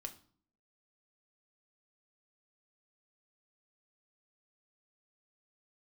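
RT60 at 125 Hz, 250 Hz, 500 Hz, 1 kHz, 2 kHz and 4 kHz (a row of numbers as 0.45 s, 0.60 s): 0.65 s, 0.70 s, 0.50 s, 0.50 s, 0.40 s, 0.40 s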